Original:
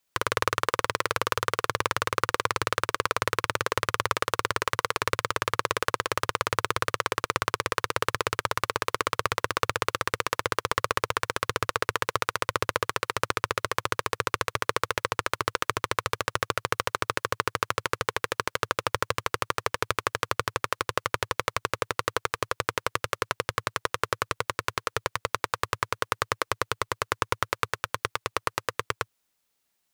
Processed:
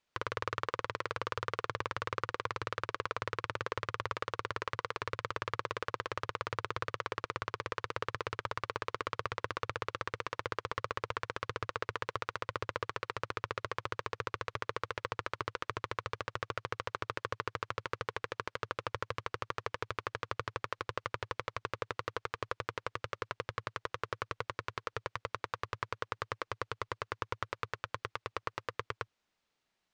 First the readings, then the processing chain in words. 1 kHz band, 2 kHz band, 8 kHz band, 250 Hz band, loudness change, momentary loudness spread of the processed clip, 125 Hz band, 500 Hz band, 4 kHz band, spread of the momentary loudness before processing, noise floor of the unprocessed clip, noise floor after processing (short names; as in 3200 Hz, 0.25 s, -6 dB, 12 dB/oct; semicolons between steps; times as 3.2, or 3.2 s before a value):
-10.0 dB, -10.5 dB, -20.0 dB, -9.5 dB, -10.5 dB, 3 LU, -7.5 dB, -9.5 dB, -13.0 dB, 3 LU, -76 dBFS, -84 dBFS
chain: limiter -14 dBFS, peak gain reduction 11.5 dB; air absorption 130 m